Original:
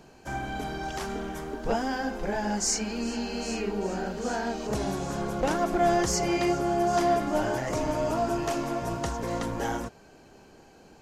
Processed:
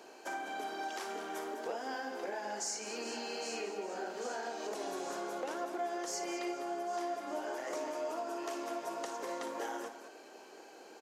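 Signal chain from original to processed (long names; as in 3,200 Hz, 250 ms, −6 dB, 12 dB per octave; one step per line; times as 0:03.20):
high-pass filter 330 Hz 24 dB per octave
downward compressor 5 to 1, threshold −39 dBFS, peak gain reduction 16.5 dB
on a send: multi-tap delay 57/203 ms −10/−10.5 dB
on the sum: level +1 dB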